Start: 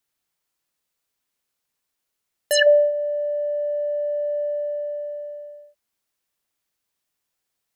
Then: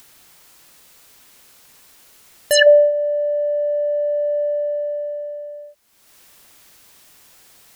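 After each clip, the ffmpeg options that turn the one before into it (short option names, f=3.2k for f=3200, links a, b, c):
-af "acompressor=mode=upward:threshold=-33dB:ratio=2.5,volume=4.5dB"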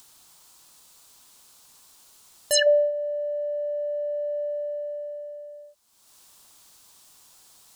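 -af "equalizer=f=500:t=o:w=1:g=-3,equalizer=f=1k:t=o:w=1:g=6,equalizer=f=2k:t=o:w=1:g=-7,equalizer=f=4k:t=o:w=1:g=4,equalizer=f=8k:t=o:w=1:g=6,volume=-7.5dB"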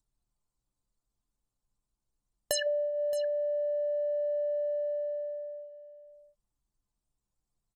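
-af "acompressor=threshold=-30dB:ratio=8,anlmdn=0.158,aecho=1:1:622:0.178,volume=2dB"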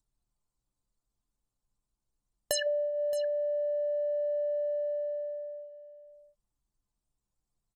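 -af anull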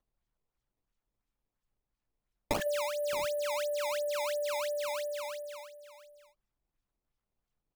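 -af "acrusher=samples=17:mix=1:aa=0.000001:lfo=1:lforange=27.2:lforate=2.9,volume=-2.5dB"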